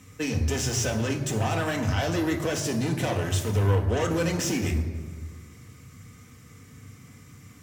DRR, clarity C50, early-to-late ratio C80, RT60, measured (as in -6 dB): 2.5 dB, 9.0 dB, 10.0 dB, 1.6 s